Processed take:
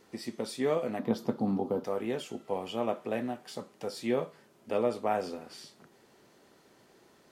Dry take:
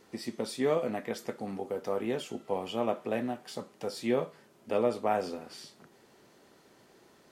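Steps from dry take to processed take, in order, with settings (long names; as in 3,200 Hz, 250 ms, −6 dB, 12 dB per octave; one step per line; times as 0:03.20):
0:00.99–0:01.84: octave-band graphic EQ 125/250/1,000/2,000/4,000/8,000 Hz +10/+10/+8/−10/+5/−9 dB
level −1 dB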